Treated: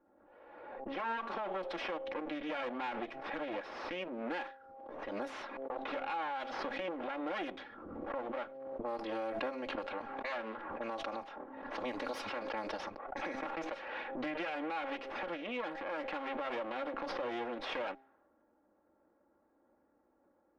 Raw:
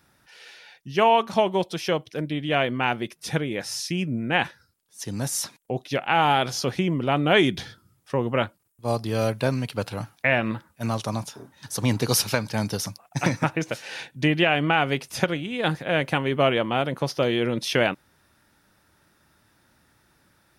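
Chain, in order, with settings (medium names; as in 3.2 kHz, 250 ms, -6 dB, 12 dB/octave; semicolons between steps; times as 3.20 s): comb filter that takes the minimum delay 3.6 ms; treble shelf 2.5 kHz -10.5 dB; compression 2.5:1, threshold -39 dBFS, peak gain reduction 14 dB; level-controlled noise filter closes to 470 Hz, open at -33 dBFS; three-band isolator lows -23 dB, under 340 Hz, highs -17 dB, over 3.8 kHz; de-hum 133.7 Hz, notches 6; peak limiter -34 dBFS, peak gain reduction 9 dB; swell ahead of each attack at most 37 dB/s; trim +4.5 dB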